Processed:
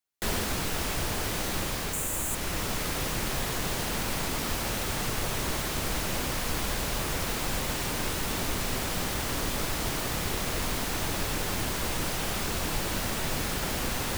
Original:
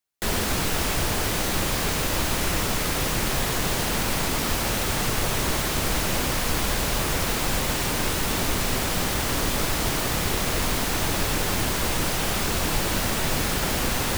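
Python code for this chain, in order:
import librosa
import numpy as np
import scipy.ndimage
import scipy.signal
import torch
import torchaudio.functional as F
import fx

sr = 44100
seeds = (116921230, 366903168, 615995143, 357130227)

y = fx.high_shelf_res(x, sr, hz=6300.0, db=6.5, q=3.0, at=(1.93, 2.35))
y = fx.rider(y, sr, range_db=10, speed_s=0.5)
y = F.gain(torch.from_numpy(y), -6.0).numpy()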